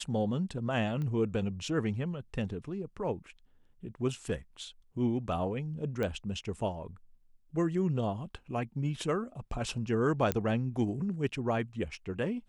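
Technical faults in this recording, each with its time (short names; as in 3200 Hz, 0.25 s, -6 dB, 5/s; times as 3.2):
1.02 pop -27 dBFS
6.03 pop -21 dBFS
10.32 pop -13 dBFS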